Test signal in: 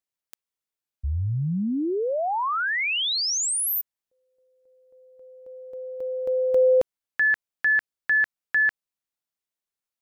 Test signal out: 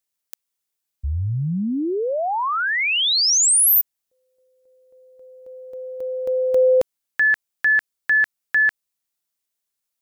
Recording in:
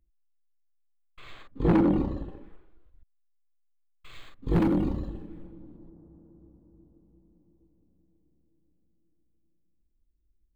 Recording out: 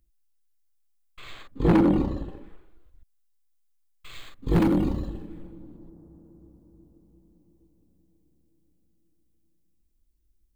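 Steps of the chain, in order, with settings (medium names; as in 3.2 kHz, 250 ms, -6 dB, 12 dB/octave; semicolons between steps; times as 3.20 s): treble shelf 4.1 kHz +8.5 dB; trim +2.5 dB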